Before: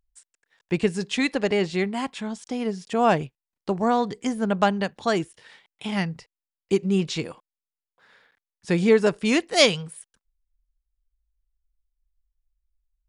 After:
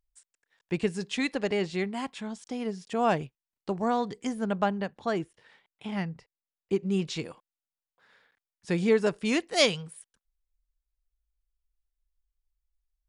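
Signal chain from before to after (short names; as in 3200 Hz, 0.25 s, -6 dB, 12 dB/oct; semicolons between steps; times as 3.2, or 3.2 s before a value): 4.58–6.86 high shelf 3200 Hz -10.5 dB; gain -5.5 dB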